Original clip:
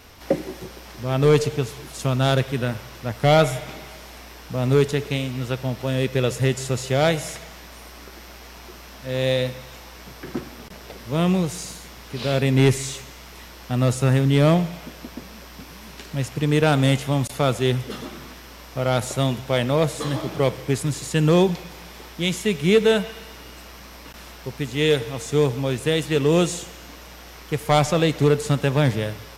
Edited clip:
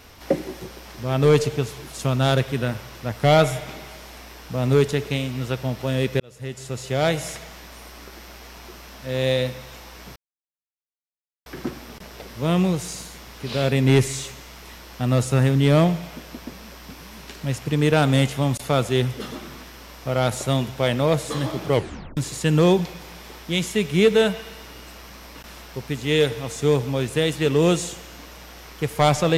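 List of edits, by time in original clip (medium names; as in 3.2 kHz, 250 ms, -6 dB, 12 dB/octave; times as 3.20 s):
6.20–7.25 s: fade in
10.16 s: insert silence 1.30 s
20.44 s: tape stop 0.43 s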